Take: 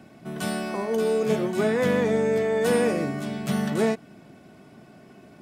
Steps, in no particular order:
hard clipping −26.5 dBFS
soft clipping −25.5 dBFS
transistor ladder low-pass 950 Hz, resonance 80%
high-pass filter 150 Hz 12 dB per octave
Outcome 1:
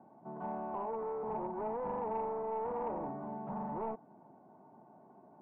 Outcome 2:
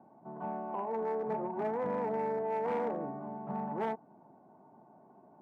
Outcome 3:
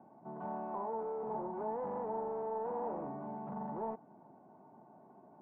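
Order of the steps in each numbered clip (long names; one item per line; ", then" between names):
high-pass filter, then hard clipping, then transistor ladder low-pass, then soft clipping
transistor ladder low-pass, then hard clipping, then soft clipping, then high-pass filter
soft clipping, then high-pass filter, then hard clipping, then transistor ladder low-pass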